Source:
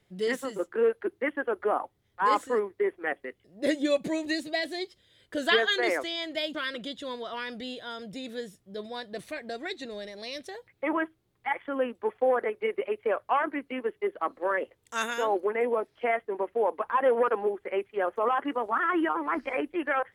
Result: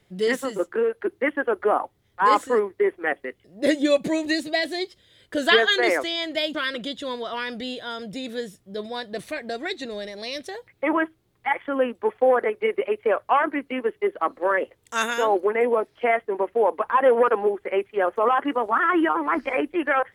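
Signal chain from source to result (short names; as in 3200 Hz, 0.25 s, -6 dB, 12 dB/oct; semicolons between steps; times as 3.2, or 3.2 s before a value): 0.65–1.1 compressor, threshold -25 dBFS, peak gain reduction 6 dB; gain +6 dB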